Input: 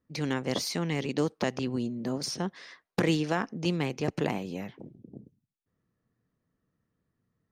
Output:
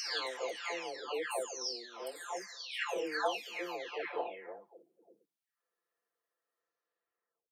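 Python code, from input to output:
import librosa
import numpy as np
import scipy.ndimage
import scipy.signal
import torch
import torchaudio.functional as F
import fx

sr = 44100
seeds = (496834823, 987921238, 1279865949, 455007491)

y = fx.spec_delay(x, sr, highs='early', ms=919)
y = scipy.signal.sosfilt(scipy.signal.butter(4, 500.0, 'highpass', fs=sr, output='sos'), y)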